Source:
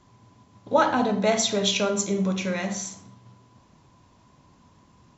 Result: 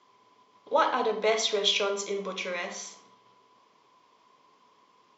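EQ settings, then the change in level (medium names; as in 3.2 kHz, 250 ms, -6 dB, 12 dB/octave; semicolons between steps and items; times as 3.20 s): cabinet simulation 380–6700 Hz, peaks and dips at 440 Hz +10 dB, 1.1 kHz +9 dB, 2.2 kHz +7 dB, 3.2 kHz +8 dB, 4.9 kHz +5 dB; -6.5 dB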